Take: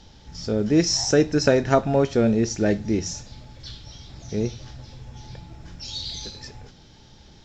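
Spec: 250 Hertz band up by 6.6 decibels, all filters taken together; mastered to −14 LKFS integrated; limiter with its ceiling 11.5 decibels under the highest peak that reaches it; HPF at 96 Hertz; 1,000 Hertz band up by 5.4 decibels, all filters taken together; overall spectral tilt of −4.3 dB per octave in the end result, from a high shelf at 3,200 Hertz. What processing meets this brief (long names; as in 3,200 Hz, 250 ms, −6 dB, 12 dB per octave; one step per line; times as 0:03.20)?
high-pass filter 96 Hz
parametric band 250 Hz +8 dB
parametric band 1,000 Hz +7 dB
high-shelf EQ 3,200 Hz +4.5 dB
level +7.5 dB
brickwall limiter −2.5 dBFS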